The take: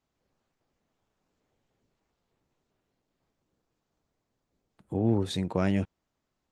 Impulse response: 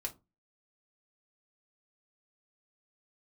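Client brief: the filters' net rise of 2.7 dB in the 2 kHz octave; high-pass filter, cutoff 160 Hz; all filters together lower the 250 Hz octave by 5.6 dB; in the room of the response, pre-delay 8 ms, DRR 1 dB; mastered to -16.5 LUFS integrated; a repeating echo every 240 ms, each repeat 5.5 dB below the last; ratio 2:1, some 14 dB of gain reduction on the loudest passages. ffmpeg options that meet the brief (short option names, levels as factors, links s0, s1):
-filter_complex "[0:a]highpass=160,equalizer=f=250:t=o:g=-6.5,equalizer=f=2000:t=o:g=3.5,acompressor=threshold=0.00282:ratio=2,aecho=1:1:240|480|720|960|1200|1440|1680:0.531|0.281|0.149|0.079|0.0419|0.0222|0.0118,asplit=2[s0][s1];[1:a]atrim=start_sample=2205,adelay=8[s2];[s1][s2]afir=irnorm=-1:irlink=0,volume=0.944[s3];[s0][s3]amix=inputs=2:normalize=0,volume=22.4"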